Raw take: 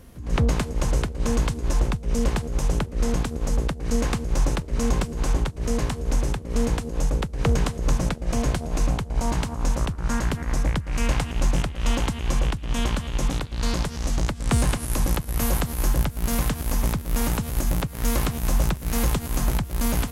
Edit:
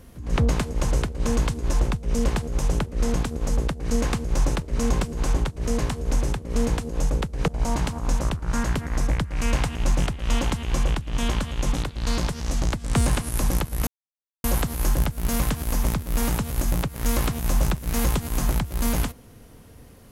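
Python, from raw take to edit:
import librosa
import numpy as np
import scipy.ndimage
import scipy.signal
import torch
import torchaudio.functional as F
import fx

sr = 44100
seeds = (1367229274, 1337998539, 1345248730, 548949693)

y = fx.edit(x, sr, fx.cut(start_s=7.48, length_s=1.56),
    fx.insert_silence(at_s=15.43, length_s=0.57), tone=tone)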